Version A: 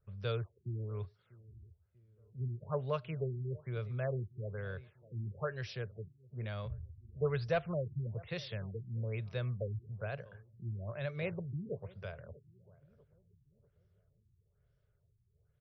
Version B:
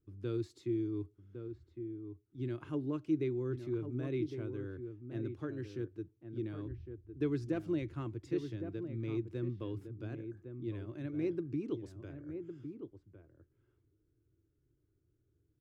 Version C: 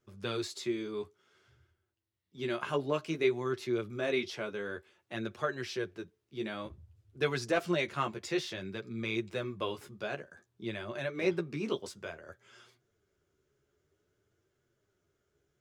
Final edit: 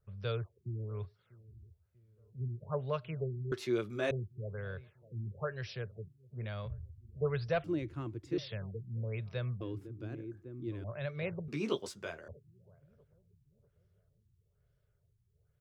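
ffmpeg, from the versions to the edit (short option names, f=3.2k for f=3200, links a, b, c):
-filter_complex "[2:a]asplit=2[a][b];[1:a]asplit=2[c][d];[0:a]asplit=5[e][f][g][h][i];[e]atrim=end=3.522[j];[a]atrim=start=3.518:end=4.112[k];[f]atrim=start=4.108:end=7.642[l];[c]atrim=start=7.638:end=8.382[m];[g]atrim=start=8.378:end=9.612[n];[d]atrim=start=9.608:end=10.842[o];[h]atrim=start=10.838:end=11.482[p];[b]atrim=start=11.478:end=12.282[q];[i]atrim=start=12.278[r];[j][k]acrossfade=d=0.004:c1=hsin:c2=hsin[s];[s][l]acrossfade=d=0.004:c1=hsin:c2=hsin[t];[t][m]acrossfade=d=0.004:c1=hsin:c2=hsin[u];[u][n]acrossfade=d=0.004:c1=hsin:c2=hsin[v];[v][o]acrossfade=d=0.004:c1=hsin:c2=hsin[w];[w][p]acrossfade=d=0.004:c1=hsin:c2=hsin[x];[x][q]acrossfade=d=0.004:c1=hsin:c2=hsin[y];[y][r]acrossfade=d=0.004:c1=hsin:c2=hsin"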